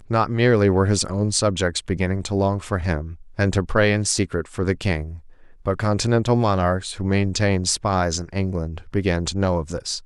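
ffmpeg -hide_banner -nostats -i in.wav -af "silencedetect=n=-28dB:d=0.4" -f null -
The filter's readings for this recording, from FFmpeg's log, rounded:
silence_start: 5.15
silence_end: 5.66 | silence_duration: 0.50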